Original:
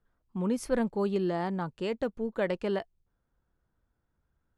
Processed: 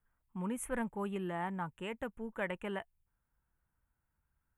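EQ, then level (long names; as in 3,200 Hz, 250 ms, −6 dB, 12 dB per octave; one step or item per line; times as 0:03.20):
Butterworth band-reject 4,800 Hz, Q 0.79
guitar amp tone stack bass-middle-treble 5-5-5
parametric band 900 Hz +5 dB 0.3 octaves
+9.5 dB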